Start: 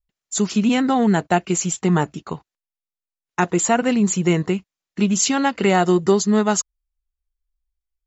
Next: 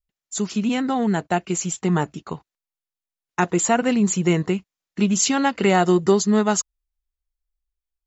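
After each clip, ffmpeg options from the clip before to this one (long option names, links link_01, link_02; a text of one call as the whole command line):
ffmpeg -i in.wav -af "dynaudnorm=framelen=550:gausssize=7:maxgain=11.5dB,volume=-4.5dB" out.wav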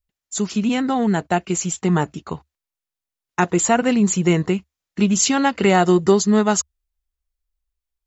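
ffmpeg -i in.wav -af "equalizer=frequency=72:width=3.4:gain=9.5,volume=2dB" out.wav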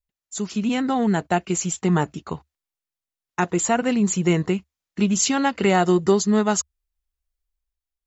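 ffmpeg -i in.wav -af "dynaudnorm=framelen=100:gausssize=13:maxgain=7dB,volume=-6dB" out.wav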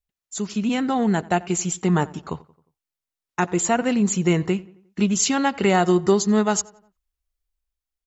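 ffmpeg -i in.wav -filter_complex "[0:a]asplit=2[link_01][link_02];[link_02]adelay=89,lowpass=frequency=2800:poles=1,volume=-21dB,asplit=2[link_03][link_04];[link_04]adelay=89,lowpass=frequency=2800:poles=1,volume=0.49,asplit=2[link_05][link_06];[link_06]adelay=89,lowpass=frequency=2800:poles=1,volume=0.49,asplit=2[link_07][link_08];[link_08]adelay=89,lowpass=frequency=2800:poles=1,volume=0.49[link_09];[link_01][link_03][link_05][link_07][link_09]amix=inputs=5:normalize=0" out.wav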